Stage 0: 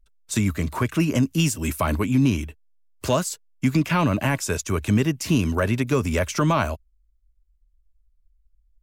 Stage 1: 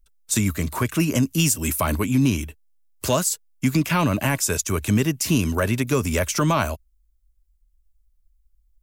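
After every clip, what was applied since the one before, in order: treble shelf 6.3 kHz +11.5 dB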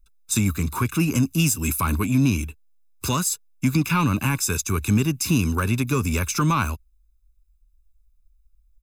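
comb 0.8 ms, depth 78%; in parallel at -10.5 dB: hard clipper -22 dBFS, distortion -5 dB; on the sum: trim -4.5 dB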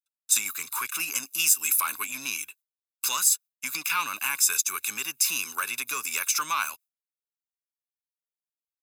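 high-pass 1.3 kHz 12 dB/octave; treble shelf 7.3 kHz +6.5 dB; gate with hold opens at -43 dBFS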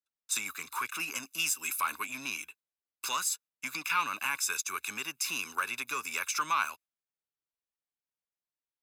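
low-pass 2.3 kHz 6 dB/octave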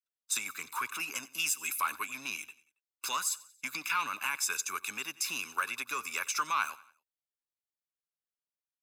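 gate -52 dBFS, range -7 dB; harmonic-percussive split percussive +5 dB; feedback delay 92 ms, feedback 46%, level -20.5 dB; trim -5 dB

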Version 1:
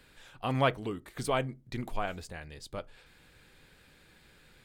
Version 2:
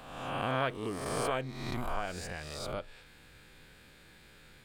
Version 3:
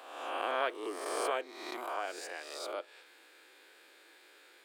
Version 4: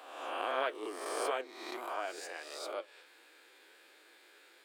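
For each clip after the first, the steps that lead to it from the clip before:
reverse spectral sustain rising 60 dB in 1.10 s; compression 2:1, threshold -33 dBFS, peak gain reduction 8.5 dB
elliptic high-pass 330 Hz, stop band 60 dB
flange 1.5 Hz, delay 6.1 ms, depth 6.4 ms, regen +61%; trim +3 dB

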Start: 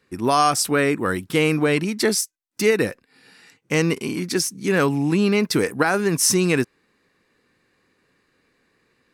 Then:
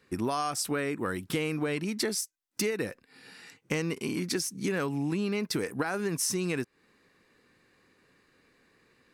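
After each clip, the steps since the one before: compression 6:1, threshold -28 dBFS, peak gain reduction 14.5 dB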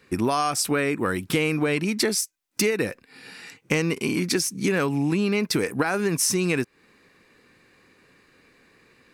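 peaking EQ 2.4 kHz +4 dB 0.24 oct; trim +7 dB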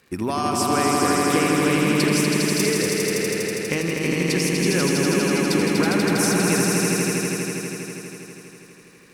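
echo with a slow build-up 81 ms, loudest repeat 5, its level -4 dB; crackle 260 per s -43 dBFS; trim -2.5 dB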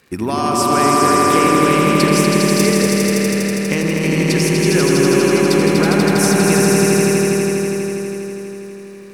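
bucket-brigade echo 106 ms, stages 1024, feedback 82%, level -5 dB; trim +4 dB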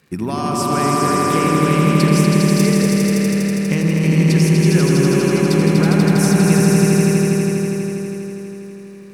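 peaking EQ 160 Hz +10.5 dB 0.74 oct; trim -4.5 dB

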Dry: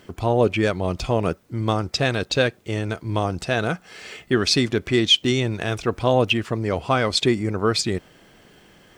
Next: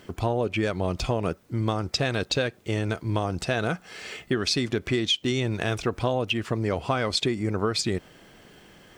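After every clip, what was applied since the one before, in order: compression 10:1, threshold -21 dBFS, peak gain reduction 10.5 dB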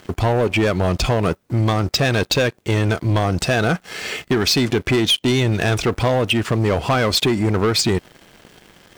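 waveshaping leveller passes 3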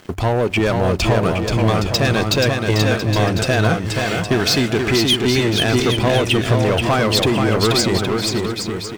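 hum notches 50/100 Hz; bouncing-ball echo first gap 480 ms, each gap 0.7×, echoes 5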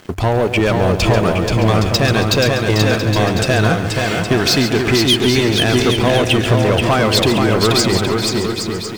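bit-crushed delay 138 ms, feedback 35%, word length 7-bit, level -10 dB; trim +2 dB

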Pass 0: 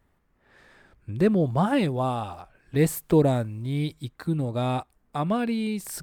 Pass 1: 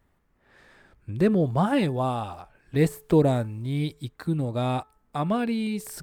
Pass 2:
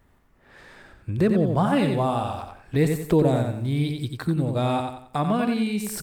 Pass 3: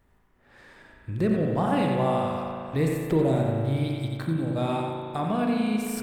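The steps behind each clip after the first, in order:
de-esser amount 65%; de-hum 433.2 Hz, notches 4
on a send: feedback delay 90 ms, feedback 30%, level -6 dB; on the sum: compression 1.5:1, threshold -34 dBFS, peak gain reduction 7.5 dB; trim +6.5 dB
spring tank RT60 2.5 s, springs 37 ms, chirp 75 ms, DRR 1 dB; trim -5 dB

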